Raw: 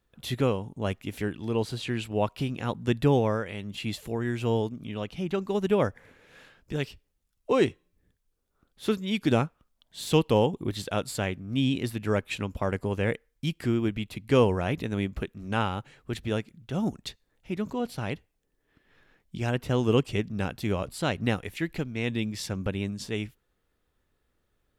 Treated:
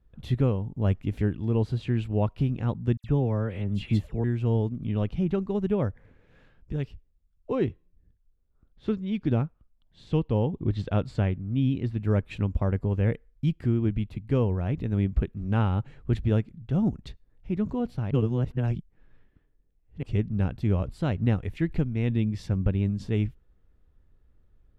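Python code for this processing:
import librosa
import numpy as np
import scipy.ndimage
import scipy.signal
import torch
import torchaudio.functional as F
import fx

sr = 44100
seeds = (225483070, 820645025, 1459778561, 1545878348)

y = fx.dispersion(x, sr, late='lows', ms=68.0, hz=2400.0, at=(2.97, 4.24))
y = fx.lowpass(y, sr, hz=5400.0, slope=12, at=(7.55, 12.02))
y = fx.edit(y, sr, fx.reverse_span(start_s=18.11, length_s=1.92), tone=tone)
y = fx.riaa(y, sr, side='playback')
y = fx.rider(y, sr, range_db=10, speed_s=0.5)
y = y * 10.0 ** (-5.5 / 20.0)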